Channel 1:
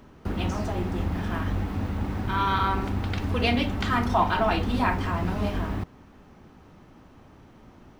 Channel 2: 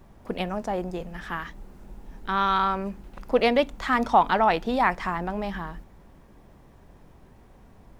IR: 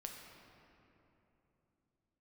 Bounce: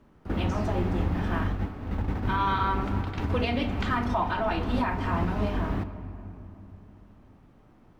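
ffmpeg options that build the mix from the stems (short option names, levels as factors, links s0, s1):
-filter_complex "[0:a]highshelf=f=4700:g=-9.5,volume=0.891,asplit=2[s0][s1];[s1]volume=0.668[s2];[1:a]volume=-1,volume=0.224,asplit=2[s3][s4];[s4]apad=whole_len=352609[s5];[s0][s5]sidechaingate=range=0.0224:threshold=0.00224:ratio=16:detection=peak[s6];[2:a]atrim=start_sample=2205[s7];[s2][s7]afir=irnorm=-1:irlink=0[s8];[s6][s3][s8]amix=inputs=3:normalize=0,alimiter=limit=0.15:level=0:latency=1:release=365"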